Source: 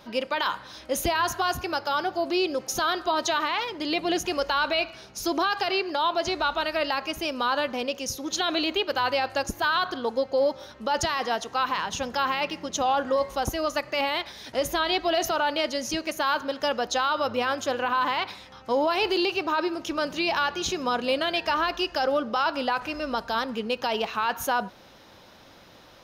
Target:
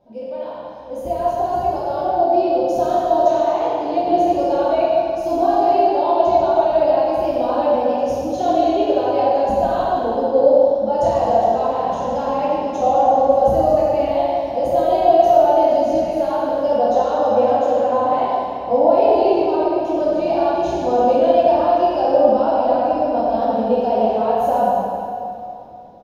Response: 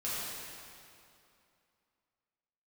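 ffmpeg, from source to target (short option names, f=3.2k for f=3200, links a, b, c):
-filter_complex "[0:a]firequalizer=gain_entry='entry(420,0);entry(710,7);entry(1200,-19)':delay=0.05:min_phase=1,dynaudnorm=f=420:g=7:m=11.5dB[a];[1:a]atrim=start_sample=2205[b];[a][b]afir=irnorm=-1:irlink=0,volume=-5dB"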